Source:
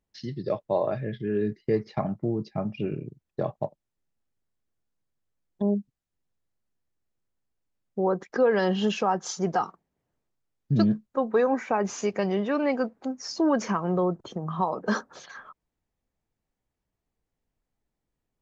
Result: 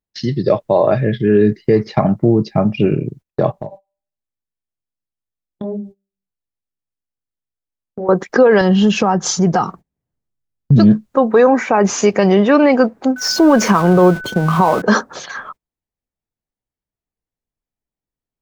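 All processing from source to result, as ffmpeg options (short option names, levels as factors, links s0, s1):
-filter_complex "[0:a]asettb=1/sr,asplit=3[s0][s1][s2];[s0]atrim=end=3.524[s3];[s1]atrim=start=3.52:end=8.09,asetpts=PTS-STARTPTS,afade=t=in:d=0.004:c=qsin,afade=t=out:st=4.566:d=0.004:c=qsin,bandreject=f=196.8:t=h:w=4,bandreject=f=393.6:t=h:w=4,bandreject=f=590.4:t=h:w=4,bandreject=f=787.2:t=h:w=4,bandreject=f=984:t=h:w=4,bandreject=f=1180.8:t=h:w=4,bandreject=f=1377.6:t=h:w=4,bandreject=f=1574.4:t=h:w=4,bandreject=f=1771.2:t=h:w=4,bandreject=f=1968:t=h:w=4,bandreject=f=2164.8:t=h:w=4,bandreject=f=2361.6:t=h:w=4,bandreject=f=2558.4:t=h:w=4,bandreject=f=2755.2:t=h:w=4,bandreject=f=2952:t=h:w=4,bandreject=f=3148.8:t=h:w=4,bandreject=f=3345.6:t=h:w=4,bandreject=f=3542.4:t=h:w=4,bandreject=f=3739.2:t=h:w=4,bandreject=f=3936:t=h:w=4,bandreject=f=4132.8:t=h:w=4,bandreject=f=4329.6:t=h:w=4,bandreject=f=4526.4:t=h:w=4,bandreject=f=4723.2:t=h:w=4,bandreject=f=4920:t=h:w=4,bandreject=f=5116.8:t=h:w=4,bandreject=f=5313.6:t=h:w=4,bandreject=f=5510.4:t=h:w=4,bandreject=f=5707.2:t=h:w=4,bandreject=f=5904:t=h:w=4,bandreject=f=6100.8:t=h:w=4,bandreject=f=6297.6:t=h:w=4,bandreject=f=6494.4:t=h:w=4,bandreject=f=6691.2:t=h:w=4,flanger=delay=17:depth=6.4:speed=1.2,acompressor=threshold=0.0126:ratio=4:attack=3.2:release=140:knee=1:detection=peak[s4];[s2]atrim=start=8.086[s5];[s3][s4]acrossfade=d=0.004:c1=hsin:c2=qsin[s6];[s6][s5]acrossfade=d=0.004:c1=qsin:c2=hsin,asettb=1/sr,asplit=3[s7][s8][s9];[s7]atrim=end=8.614[s10];[s8]atrim=start=8.61:end=10.78,asetpts=PTS-STARTPTS,afade=t=in:d=0.004:c=qsin,afade=t=out:st=2.166:d=0.004:c=qsin,bass=f=250:g=10,treble=f=4000:g=1,acompressor=threshold=0.0316:ratio=2:attack=3.2:release=140:knee=1:detection=peak[s11];[s9]atrim=start=10.776[s12];[s10][s11]acrossfade=d=0.004:c1=hsin:c2=qsin[s13];[s13][s12]acrossfade=d=0.004:c1=qsin:c2=hsin,asettb=1/sr,asplit=3[s14][s15][s16];[s14]atrim=end=13.164[s17];[s15]atrim=start=13.16:end=14.82,asetpts=PTS-STARTPTS,afade=t=in:d=0.004:c=qsin,afade=t=out:st=1.656:d=0.004:c=qsin,aeval=exprs='val(0)+0.5*0.0119*sgn(val(0))':c=same,agate=range=0.251:threshold=0.0112:ratio=16:release=100:detection=peak,aeval=exprs='val(0)+0.00708*sin(2*PI*1500*n/s)':c=same[s18];[s16]atrim=start=14.816[s19];[s17][s18]acrossfade=d=0.004:c1=hsin:c2=qsin[s20];[s20][s19]acrossfade=d=0.004:c1=qsin:c2=hsin,agate=range=0.0708:threshold=0.00316:ratio=16:detection=peak,alimiter=level_in=7.08:limit=0.891:release=50:level=0:latency=1,volume=0.841"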